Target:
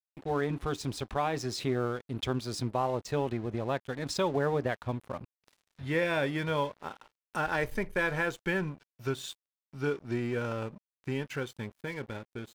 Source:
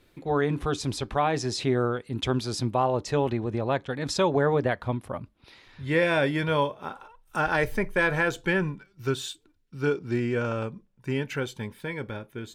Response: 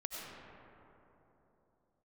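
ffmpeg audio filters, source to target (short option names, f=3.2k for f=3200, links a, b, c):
-filter_complex "[0:a]asplit=2[a][b];[b]acompressor=threshold=-33dB:ratio=6,volume=0dB[c];[a][c]amix=inputs=2:normalize=0,aeval=exprs='sgn(val(0))*max(abs(val(0))-0.00944,0)':c=same,volume=-7dB"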